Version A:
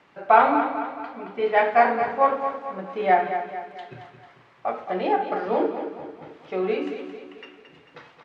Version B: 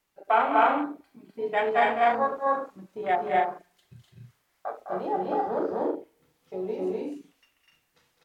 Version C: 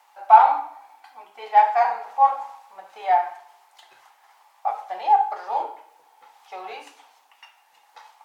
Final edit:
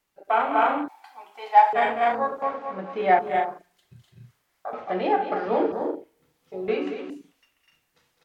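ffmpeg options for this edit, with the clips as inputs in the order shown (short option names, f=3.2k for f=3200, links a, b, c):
-filter_complex "[0:a]asplit=3[a][b][c];[1:a]asplit=5[d][e][f][g][h];[d]atrim=end=0.882[i];[2:a]atrim=start=0.878:end=1.732[j];[e]atrim=start=1.728:end=2.422[k];[a]atrim=start=2.418:end=3.192[l];[f]atrim=start=3.188:end=4.732[m];[b]atrim=start=4.728:end=5.722[n];[g]atrim=start=5.718:end=6.682[o];[c]atrim=start=6.678:end=7.102[p];[h]atrim=start=7.098[q];[i][j]acrossfade=d=0.004:c1=hsin:c2=hsin[r];[r][k]acrossfade=d=0.004:c1=hsin:c2=hsin[s];[s][l]acrossfade=d=0.004:c1=hsin:c2=hsin[t];[t][m]acrossfade=d=0.004:c1=hsin:c2=hsin[u];[u][n]acrossfade=d=0.004:c1=hsin:c2=hsin[v];[v][o]acrossfade=d=0.004:c1=hsin:c2=hsin[w];[w][p]acrossfade=d=0.004:c1=hsin:c2=hsin[x];[x][q]acrossfade=d=0.004:c1=hsin:c2=hsin"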